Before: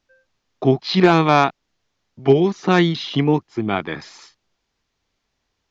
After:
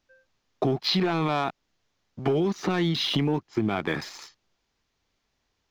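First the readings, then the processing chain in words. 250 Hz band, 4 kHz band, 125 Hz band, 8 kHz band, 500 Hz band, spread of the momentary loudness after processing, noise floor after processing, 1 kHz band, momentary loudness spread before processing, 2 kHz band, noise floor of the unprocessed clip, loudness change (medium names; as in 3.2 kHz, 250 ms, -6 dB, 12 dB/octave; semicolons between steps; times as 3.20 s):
-8.0 dB, -2.0 dB, -7.5 dB, no reading, -9.5 dB, 8 LU, -77 dBFS, -11.0 dB, 10 LU, -9.0 dB, -75 dBFS, -8.5 dB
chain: waveshaping leveller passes 1; peak limiter -12 dBFS, peak gain reduction 9 dB; compression, threshold -21 dBFS, peak gain reduction 6 dB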